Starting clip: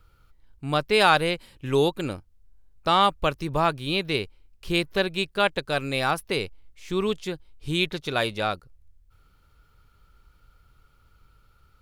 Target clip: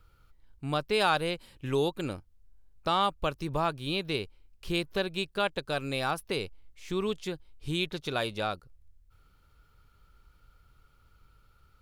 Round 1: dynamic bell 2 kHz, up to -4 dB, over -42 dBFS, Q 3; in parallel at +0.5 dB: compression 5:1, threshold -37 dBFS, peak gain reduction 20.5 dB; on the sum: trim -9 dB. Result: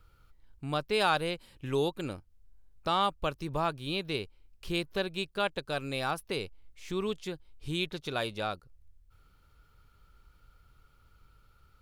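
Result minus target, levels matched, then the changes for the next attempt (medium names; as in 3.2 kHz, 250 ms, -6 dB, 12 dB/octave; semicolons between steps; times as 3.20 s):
compression: peak gain reduction +7.5 dB
change: compression 5:1, threshold -27.5 dBFS, peak gain reduction 12.5 dB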